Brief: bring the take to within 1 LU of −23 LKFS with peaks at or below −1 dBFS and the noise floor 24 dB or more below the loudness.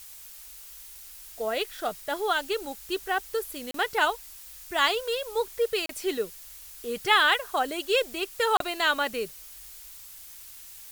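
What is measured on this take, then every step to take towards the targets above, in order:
number of dropouts 3; longest dropout 33 ms; background noise floor −46 dBFS; target noise floor −51 dBFS; integrated loudness −27.0 LKFS; sample peak −7.0 dBFS; target loudness −23.0 LKFS
→ repair the gap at 0:03.71/0:05.86/0:08.57, 33 ms
broadband denoise 6 dB, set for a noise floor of −46 dBFS
level +4 dB

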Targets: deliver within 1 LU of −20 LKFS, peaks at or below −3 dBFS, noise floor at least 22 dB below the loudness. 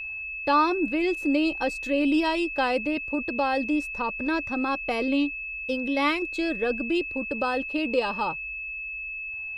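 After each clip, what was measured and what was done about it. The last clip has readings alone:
interfering tone 2,600 Hz; level of the tone −32 dBFS; integrated loudness −26.0 LKFS; sample peak −11.0 dBFS; target loudness −20.0 LKFS
→ notch filter 2,600 Hz, Q 30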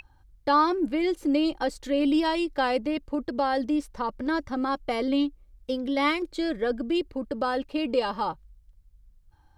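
interfering tone none found; integrated loudness −27.0 LKFS; sample peak −11.5 dBFS; target loudness −20.0 LKFS
→ level +7 dB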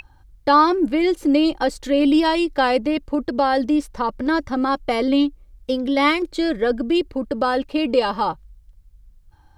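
integrated loudness −20.0 LKFS; sample peak −4.5 dBFS; background noise floor −52 dBFS

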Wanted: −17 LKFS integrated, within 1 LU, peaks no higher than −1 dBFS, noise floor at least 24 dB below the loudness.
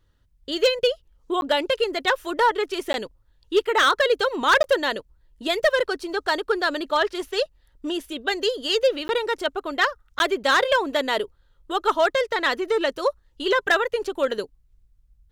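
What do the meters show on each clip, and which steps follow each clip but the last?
share of clipped samples 0.4%; peaks flattened at −11.5 dBFS; number of dropouts 5; longest dropout 11 ms; integrated loudness −23.0 LKFS; sample peak −11.5 dBFS; target loudness −17.0 LKFS
→ clipped peaks rebuilt −11.5 dBFS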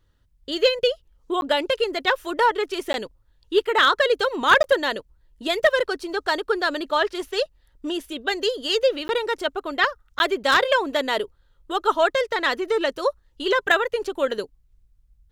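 share of clipped samples 0.0%; number of dropouts 5; longest dropout 11 ms
→ repair the gap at 0:01.41/0:02.93/0:04.63/0:09.08/0:10.19, 11 ms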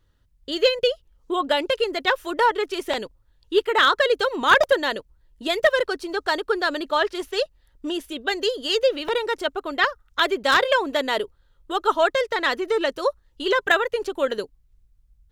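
number of dropouts 0; integrated loudness −22.5 LKFS; sample peak −2.5 dBFS; target loudness −17.0 LKFS
→ level +5.5 dB
brickwall limiter −1 dBFS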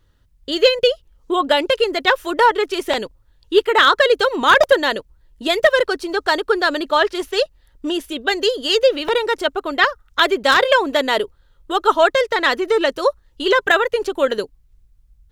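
integrated loudness −17.5 LKFS; sample peak −1.0 dBFS; background noise floor −57 dBFS

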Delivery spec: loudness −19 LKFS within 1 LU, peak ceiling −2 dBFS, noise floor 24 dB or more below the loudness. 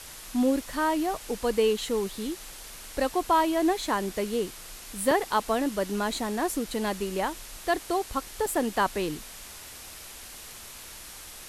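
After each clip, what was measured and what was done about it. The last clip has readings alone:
number of dropouts 2; longest dropout 2.4 ms; background noise floor −44 dBFS; target noise floor −52 dBFS; integrated loudness −28.0 LKFS; sample peak −11.0 dBFS; target loudness −19.0 LKFS
→ repair the gap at 0:05.11/0:08.46, 2.4 ms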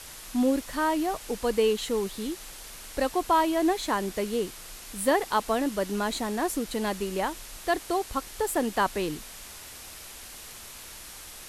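number of dropouts 0; background noise floor −44 dBFS; target noise floor −52 dBFS
→ broadband denoise 8 dB, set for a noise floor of −44 dBFS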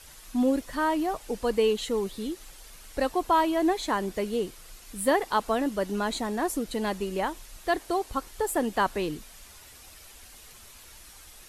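background noise floor −50 dBFS; target noise floor −52 dBFS
→ broadband denoise 6 dB, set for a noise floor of −50 dBFS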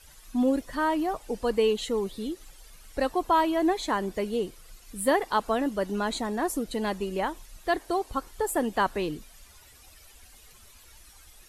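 background noise floor −53 dBFS; integrated loudness −28.0 LKFS; sample peak −11.5 dBFS; target loudness −19.0 LKFS
→ level +9 dB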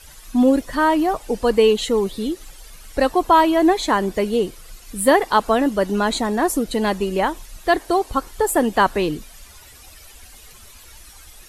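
integrated loudness −19.0 LKFS; sample peak −2.5 dBFS; background noise floor −44 dBFS

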